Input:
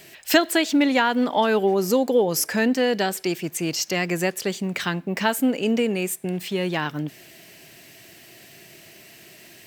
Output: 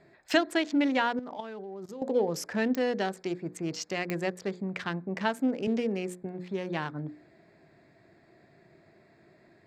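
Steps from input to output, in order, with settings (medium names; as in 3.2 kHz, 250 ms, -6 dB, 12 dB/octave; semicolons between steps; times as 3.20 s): local Wiener filter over 15 samples; hum notches 60/120/180/240/300/360/420/480/540 Hz; 1.19–2.02 s: level held to a coarse grid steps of 17 dB; distance through air 71 m; clicks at 2.75/4.10 s, -11 dBFS; 5.67–6.23 s: three bands compressed up and down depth 40%; trim -6 dB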